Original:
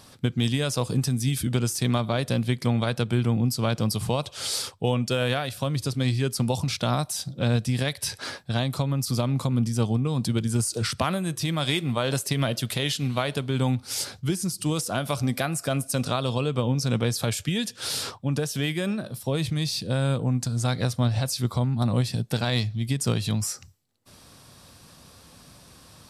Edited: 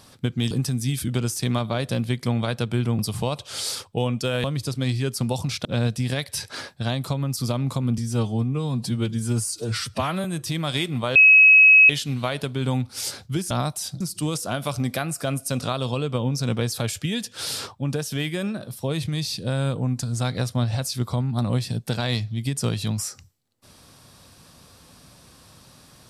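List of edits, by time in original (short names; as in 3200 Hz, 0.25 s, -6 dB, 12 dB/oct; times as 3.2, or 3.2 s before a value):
0.51–0.9 cut
3.38–3.86 cut
5.31–5.63 cut
6.84–7.34 move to 14.44
9.67–11.18 stretch 1.5×
12.09–12.83 bleep 2560 Hz -8.5 dBFS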